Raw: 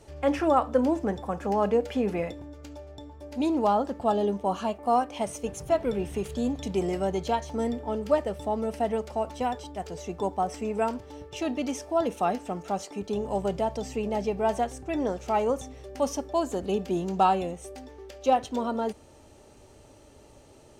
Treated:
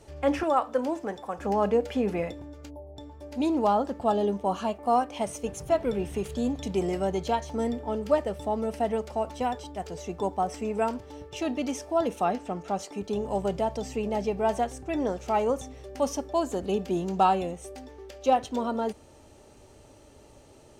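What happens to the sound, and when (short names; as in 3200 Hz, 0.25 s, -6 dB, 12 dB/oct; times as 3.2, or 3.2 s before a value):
0.43–1.39 HPF 520 Hz 6 dB/oct
2.7–2.97 spectral gain 1100–10000 Hz -28 dB
12.23–12.79 high shelf 9000 Hz -10.5 dB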